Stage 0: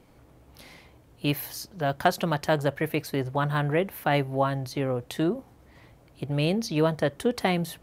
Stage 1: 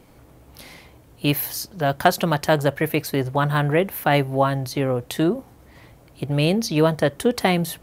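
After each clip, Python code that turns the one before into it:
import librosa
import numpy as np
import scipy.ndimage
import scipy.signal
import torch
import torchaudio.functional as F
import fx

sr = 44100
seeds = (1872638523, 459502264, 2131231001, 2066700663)

y = fx.high_shelf(x, sr, hz=8600.0, db=6.0)
y = y * librosa.db_to_amplitude(5.5)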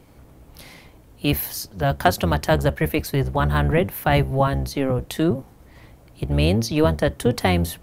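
y = fx.octave_divider(x, sr, octaves=1, level_db=0.0)
y = y * librosa.db_to_amplitude(-1.0)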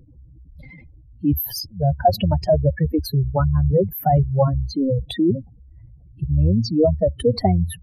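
y = fx.spec_expand(x, sr, power=3.7)
y = y * librosa.db_to_amplitude(2.5)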